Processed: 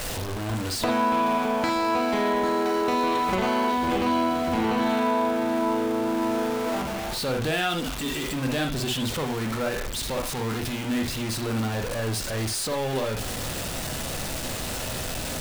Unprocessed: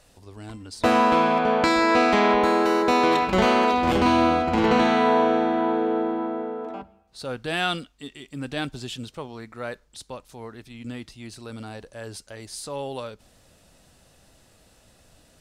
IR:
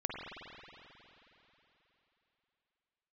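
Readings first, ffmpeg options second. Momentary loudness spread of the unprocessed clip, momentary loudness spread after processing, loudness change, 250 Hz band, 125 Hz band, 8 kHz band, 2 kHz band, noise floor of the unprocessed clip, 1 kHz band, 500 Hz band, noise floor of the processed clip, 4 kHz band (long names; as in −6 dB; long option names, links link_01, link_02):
21 LU, 6 LU, −4.5 dB, −1.5 dB, +4.5 dB, +9.5 dB, −3.0 dB, −58 dBFS, −3.5 dB, −2.5 dB, −31 dBFS, +1.5 dB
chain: -filter_complex "[0:a]aeval=exprs='val(0)+0.5*0.0562*sgn(val(0))':channel_layout=same,acompressor=threshold=-22dB:ratio=6[link_01];[1:a]atrim=start_sample=2205,atrim=end_sample=3969[link_02];[link_01][link_02]afir=irnorm=-1:irlink=0"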